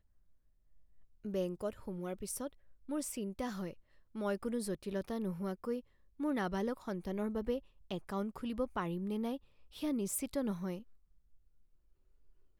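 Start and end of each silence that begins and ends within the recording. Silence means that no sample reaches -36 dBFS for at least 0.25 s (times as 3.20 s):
2.47–2.90 s
3.71–4.17 s
5.79–6.20 s
7.58–7.91 s
9.36–9.83 s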